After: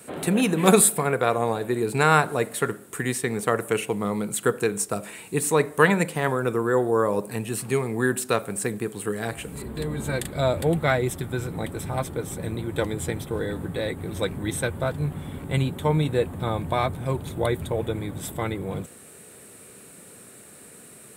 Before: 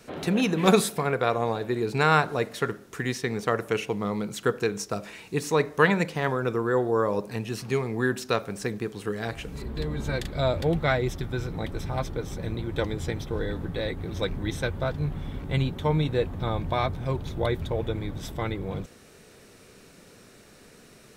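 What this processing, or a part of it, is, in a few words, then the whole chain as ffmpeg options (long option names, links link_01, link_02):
budget condenser microphone: -af "highpass=91,highshelf=frequency=7000:width_type=q:width=3:gain=7.5,volume=2.5dB"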